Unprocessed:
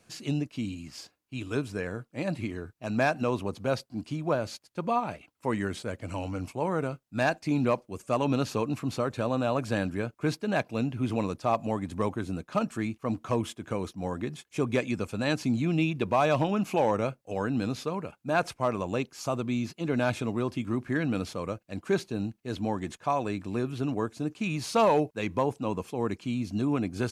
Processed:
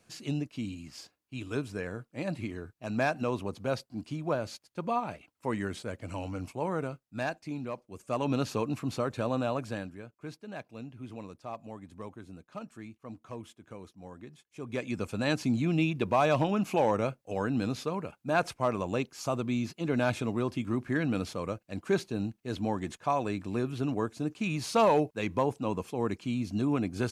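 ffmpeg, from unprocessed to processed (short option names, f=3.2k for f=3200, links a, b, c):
-af "volume=20.5dB,afade=t=out:st=6.72:d=0.96:silence=0.334965,afade=t=in:st=7.68:d=0.71:silence=0.298538,afade=t=out:st=9.38:d=0.58:silence=0.251189,afade=t=in:st=14.6:d=0.49:silence=0.223872"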